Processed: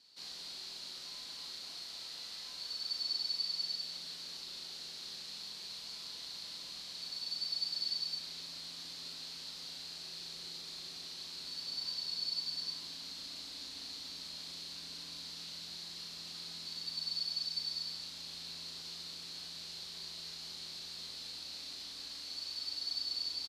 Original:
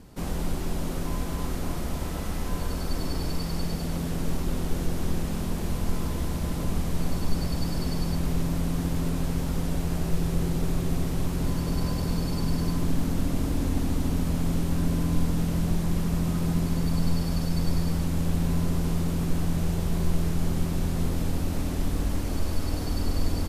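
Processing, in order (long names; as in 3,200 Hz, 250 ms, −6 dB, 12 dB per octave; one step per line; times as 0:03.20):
resonant band-pass 4,300 Hz, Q 7.4
double-tracking delay 37 ms −3.5 dB
level +8 dB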